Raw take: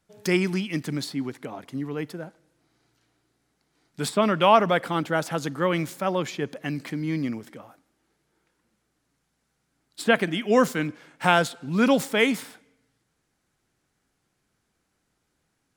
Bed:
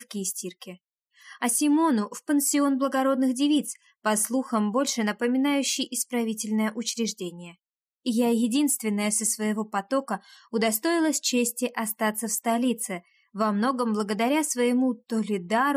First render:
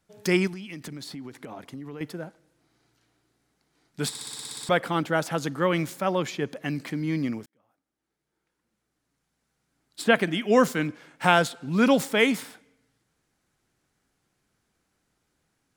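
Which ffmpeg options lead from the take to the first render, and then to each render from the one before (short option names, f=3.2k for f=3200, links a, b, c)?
-filter_complex "[0:a]asettb=1/sr,asplit=3[a][b][c];[a]atrim=end=0.474[d];[b]atrim=start=0.47:end=2.01,asetpts=PTS-STARTPTS,afade=t=in:d=0.004:c=qsin,afade=t=out:st=1.536:d=0.004:c=qsin,acompressor=threshold=-34dB:ratio=16:attack=3.2:release=140:knee=1:detection=peak[e];[c]atrim=start=2.006[f];[d][e]acrossfade=d=0.004:c1=hsin:c2=qsin[g];[g][f]acrossfade=d=0.004:c1=qsin:c2=hsin,asplit=12[h][i][j][k][l][m][n][o][p][q][r][s];[h]atrim=end=4.152[t];[i]atrim=start=4.088:end=4.152[u];[j]atrim=start=4.088:end=4.152[v];[k]atrim=start=4.088:end=4.152[w];[l]atrim=start=4.088:end=4.152[x];[m]atrim=start=4.088:end=4.152[y];[n]atrim=start=4.088:end=4.152[z];[o]atrim=start=4.088:end=4.152[aa];[p]atrim=start=4.088:end=4.152[ab];[q]atrim=start=4.088:end=4.152[ac];[r]atrim=start=4.688:end=7.46,asetpts=PTS-STARTPTS,afade=t=out:st=2.768:d=0.004:c=hsin[ad];[s]atrim=start=7.46,asetpts=PTS-STARTPTS,afade=t=in:d=2.6[ae];[t][u]acrossfade=d=0.004:c1=hsin:c2=hsin[af];[af][v]acrossfade=d=0.004:c1=hsin:c2=hsin[ag];[ag][w]acrossfade=d=0.004:c1=hsin:c2=hsin[ah];[ah][x]acrossfade=d=0.004:c1=hsin:c2=hsin[ai];[ai][y]acrossfade=d=0.004:c1=hsin:c2=hsin[aj];[aj][z]acrossfade=d=0.004:c1=hsin:c2=hsin[ak];[ak][aa]acrossfade=d=0.004:c1=hsin:c2=hsin[al];[al][ab]acrossfade=d=0.004:c1=hsin:c2=hsin[am];[am][ac]acrossfade=d=0.004:c1=hsin:c2=hsin[an];[ad][ae]concat=n=2:v=0:a=1[ao];[an][ao]acrossfade=d=0.004:c1=hsin:c2=hsin"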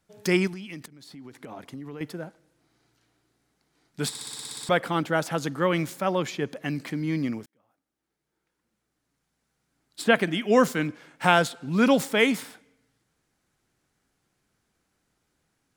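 -filter_complex "[0:a]asplit=2[a][b];[a]atrim=end=0.86,asetpts=PTS-STARTPTS,afade=t=out:st=0.856:d=0.004:c=hsin:silence=0.125893[c];[b]atrim=start=0.86,asetpts=PTS-STARTPTS,afade=t=in:d=0.71:silence=0.125893[d];[c][d]concat=n=2:v=0:a=1"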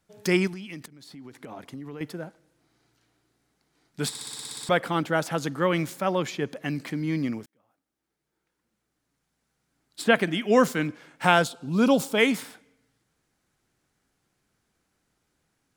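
-filter_complex "[0:a]asettb=1/sr,asplit=3[a][b][c];[a]atrim=end=11.444[d];[b]atrim=start=11.44:end=12.18,asetpts=PTS-STARTPTS,afade=t=in:d=0.004:c=qsin,afade=t=out:st=0.736:d=0.004:c=qsin,equalizer=f=1.9k:w=2.6:g=-14[e];[c]atrim=start=12.176[f];[d][e]acrossfade=d=0.004:c1=hsin:c2=qsin[g];[g][f]acrossfade=d=0.004:c1=qsin:c2=hsin"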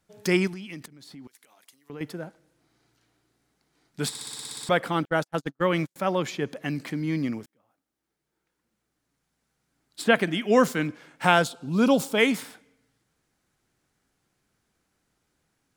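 -filter_complex "[0:a]asettb=1/sr,asplit=3[a][b][c];[a]atrim=end=1.274[d];[b]atrim=start=1.27:end=1.9,asetpts=PTS-STARTPTS,afade=t=in:d=0.004:c=qsin,afade=t=out:st=0.626:d=0.004:c=qsin,aderivative[e];[c]atrim=start=1.896[f];[d][e]acrossfade=d=0.004:c1=hsin:c2=qsin[g];[g][f]acrossfade=d=0.004:c1=qsin:c2=hsin,asettb=1/sr,asplit=3[h][i][j];[h]atrim=end=5.054[k];[i]atrim=start=5.05:end=5.96,asetpts=PTS-STARTPTS,afade=t=in:d=0.004:c=qsin,afade=t=out:st=0.906:d=0.004:c=qsin,agate=range=-47dB:threshold=-29dB:ratio=16:release=100:detection=peak[l];[j]atrim=start=5.956[m];[k][l]acrossfade=d=0.004:c1=hsin:c2=qsin[n];[n][m]acrossfade=d=0.004:c1=qsin:c2=hsin"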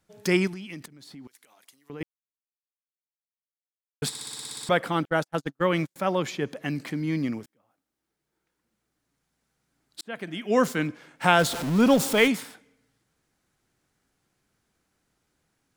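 -filter_complex "[0:a]asettb=1/sr,asplit=3[a][b][c];[a]atrim=end=11.394[d];[b]atrim=start=11.39:end=12.28,asetpts=PTS-STARTPTS,afade=t=in:d=0.004:c=qsin,afade=t=out:st=0.886:d=0.004:c=qsin,aeval=exprs='val(0)+0.5*0.0447*sgn(val(0))':c=same[e];[c]atrim=start=12.276[f];[d][e]acrossfade=d=0.004:c1=hsin:c2=qsin[g];[g][f]acrossfade=d=0.004:c1=qsin:c2=hsin,asplit=4[h][i][j][k];[h]atrim=end=2.03,asetpts=PTS-STARTPTS,afade=t=out:st=2.026:d=0.004:c=hsin[l];[i]atrim=start=2.03:end=4.02,asetpts=PTS-STARTPTS,volume=0[m];[j]atrim=start=4.02:end=10.01,asetpts=PTS-STARTPTS,afade=t=in:d=0.004:c=hsin,afade=t=out:st=5.986:d=0.004:c=hsin[n];[k]atrim=start=10.01,asetpts=PTS-STARTPTS,afade=t=in:d=0.75[o];[l][m][n][o]concat=n=4:v=0:a=1"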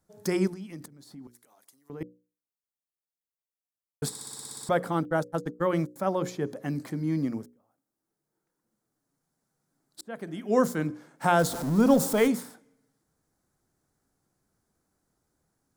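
-af "equalizer=f=2.7k:w=1:g=-14,bandreject=f=60:t=h:w=6,bandreject=f=120:t=h:w=6,bandreject=f=180:t=h:w=6,bandreject=f=240:t=h:w=6,bandreject=f=300:t=h:w=6,bandreject=f=360:t=h:w=6,bandreject=f=420:t=h:w=6,bandreject=f=480:t=h:w=6,bandreject=f=540:t=h:w=6"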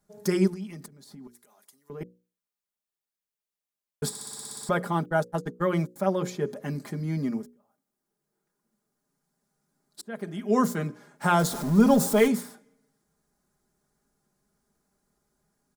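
-af "aecho=1:1:4.9:0.67"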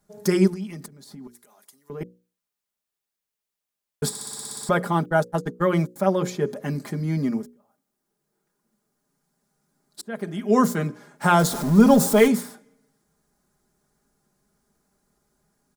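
-af "volume=4.5dB"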